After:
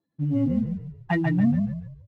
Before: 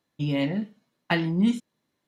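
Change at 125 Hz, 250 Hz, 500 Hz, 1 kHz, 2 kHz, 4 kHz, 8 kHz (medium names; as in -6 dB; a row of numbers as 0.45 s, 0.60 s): +4.5 dB, +2.5 dB, -2.0 dB, -0.5 dB, -2.0 dB, under -10 dB, no reading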